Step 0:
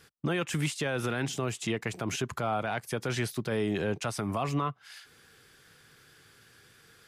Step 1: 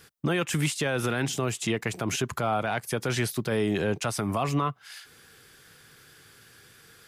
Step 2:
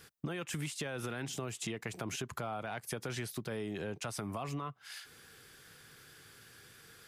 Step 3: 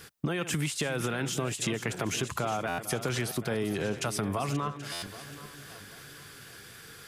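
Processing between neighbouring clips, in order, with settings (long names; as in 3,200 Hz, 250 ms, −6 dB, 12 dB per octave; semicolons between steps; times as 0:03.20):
high-shelf EQ 9,800 Hz +6.5 dB; level +3.5 dB
downward compressor, threshold −33 dBFS, peak gain reduction 11.5 dB; level −3 dB
feedback delay that plays each chunk backwards 390 ms, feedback 56%, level −12 dB; buffer that repeats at 0:02.68/0:04.92, samples 512, times 8; level +8 dB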